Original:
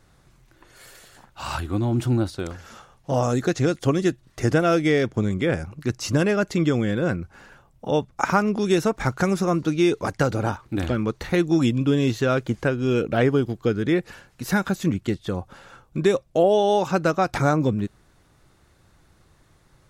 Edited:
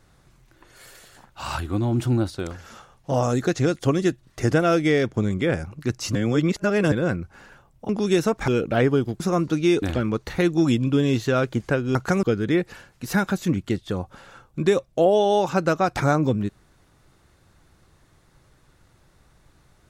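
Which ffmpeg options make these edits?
-filter_complex "[0:a]asplit=9[a][b][c][d][e][f][g][h][i];[a]atrim=end=6.152[j];[b]atrim=start=6.148:end=6.922,asetpts=PTS-STARTPTS,areverse[k];[c]atrim=start=6.918:end=7.892[l];[d]atrim=start=8.478:end=9.072[m];[e]atrim=start=12.888:end=13.612[n];[f]atrim=start=9.348:end=9.972[o];[g]atrim=start=10.758:end=12.892[p];[h]atrim=start=9.068:end=9.352[q];[i]atrim=start=13.608[r];[j][k]acrossfade=d=0.004:c1=hsin:c2=hsin[s];[s][l]acrossfade=d=0.004:c1=hsin:c2=hsin[t];[t][m]acrossfade=d=0.004:c1=hsin:c2=hsin[u];[u][n]acrossfade=d=0.004:c1=hsin:c2=hsin[v];[v][o]acrossfade=d=0.004:c1=hsin:c2=hsin[w];[w][p]acrossfade=d=0.004:c1=hsin:c2=hsin[x];[x][q]acrossfade=d=0.004:c1=hsin:c2=hsin[y];[y][r]acrossfade=d=0.004:c1=hsin:c2=hsin"

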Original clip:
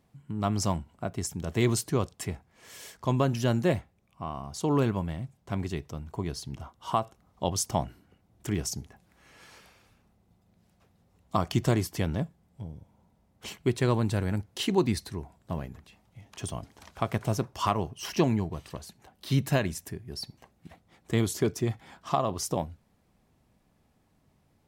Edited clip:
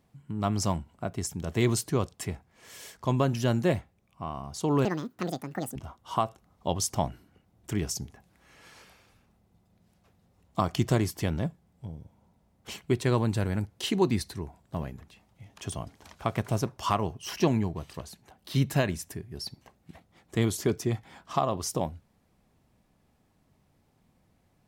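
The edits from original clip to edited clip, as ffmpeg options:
-filter_complex "[0:a]asplit=3[a][b][c];[a]atrim=end=4.854[d];[b]atrim=start=4.85:end=6.52,asetpts=PTS-STARTPTS,asetrate=81144,aresample=44100[e];[c]atrim=start=6.516[f];[d][e]acrossfade=d=0.004:c1=hsin:c2=hsin[g];[g][f]acrossfade=d=0.004:c1=hsin:c2=hsin"

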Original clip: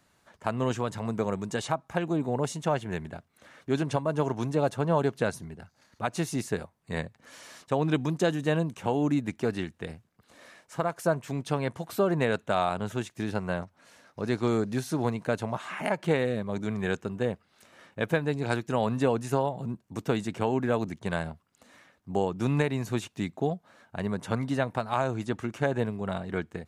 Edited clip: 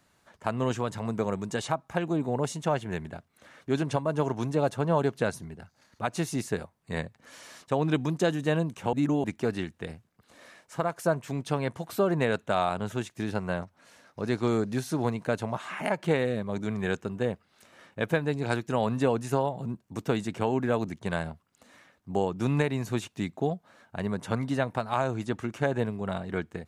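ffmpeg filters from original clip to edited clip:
-filter_complex "[0:a]asplit=3[a][b][c];[a]atrim=end=8.932[d];[b]atrim=start=8.928:end=9.242,asetpts=PTS-STARTPTS,areverse[e];[c]atrim=start=9.238[f];[d][e]acrossfade=d=0.004:c1=hsin:c2=hsin[g];[g][f]acrossfade=d=0.004:c1=hsin:c2=hsin"

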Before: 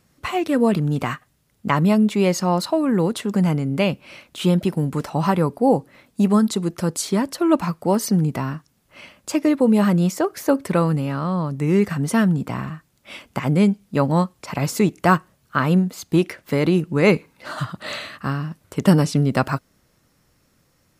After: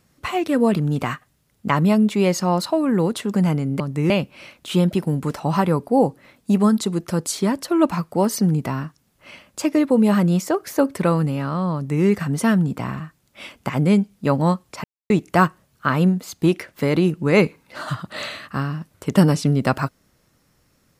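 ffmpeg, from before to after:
-filter_complex "[0:a]asplit=5[a][b][c][d][e];[a]atrim=end=3.802[f];[b]atrim=start=11.438:end=11.742[g];[c]atrim=start=3.798:end=14.54,asetpts=PTS-STARTPTS,afade=t=out:st=10.738:d=0.004:c=hsin[h];[d]atrim=start=14.54:end=14.8,asetpts=PTS-STARTPTS,volume=0[i];[e]atrim=start=14.8,asetpts=PTS-STARTPTS,afade=t=in:d=0.004:c=hsin[j];[f][g]acrossfade=d=0.004:c1=hsin:c2=hsin[k];[h][i][j]concat=n=3:v=0:a=1[l];[k][l]acrossfade=d=0.004:c1=hsin:c2=hsin"

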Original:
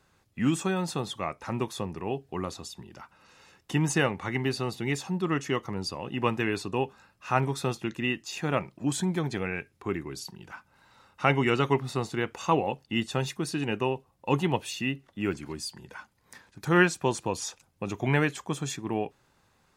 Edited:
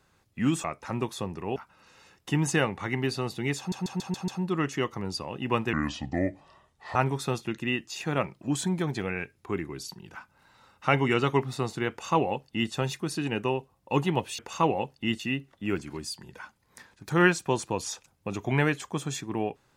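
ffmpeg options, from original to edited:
-filter_complex "[0:a]asplit=12[a][b][c][d][e][f][g][h][i][j][k][l];[a]atrim=end=0.642[m];[b]atrim=start=1.228:end=2.152[n];[c]atrim=start=2.978:end=5.142[o];[d]atrim=start=4.998:end=5.142[p];[e]atrim=start=4.998:end=5.142[q];[f]atrim=start=4.998:end=5.142[r];[g]atrim=start=4.998:end=5.142[s];[h]atrim=start=4.998:end=6.454[t];[i]atrim=start=6.45:end=7.32,asetpts=PTS-STARTPTS,asetrate=31311,aresample=44100,atrim=end_sample=54038,asetpts=PTS-STARTPTS[u];[j]atrim=start=7.316:end=14.752[v];[k]atrim=start=12.268:end=13.082[w];[l]atrim=start=14.748[x];[m][n]acrossfade=d=0.004:c1=hsin:c2=hsin[y];[y][o]acrossfade=d=0.004:c1=hsin:c2=hsin[z];[z][p]acrossfade=d=0.004:c1=hsin:c2=hsin[aa];[aa][q]acrossfade=d=0.004:c1=hsin:c2=hsin[ab];[ab][r]acrossfade=d=0.004:c1=hsin:c2=hsin[ac];[ac][s]acrossfade=d=0.004:c1=hsin:c2=hsin[ad];[ad][t]acrossfade=d=0.004:c1=hsin:c2=hsin[ae];[ae][u]acrossfade=d=0.004:c1=hsin:c2=hsin[af];[af][v]acrossfade=d=0.004:c1=hsin:c2=hsin[ag];[ag][w]acrossfade=d=0.004:c1=hsin:c2=hsin[ah];[ah][x]acrossfade=d=0.004:c1=hsin:c2=hsin"

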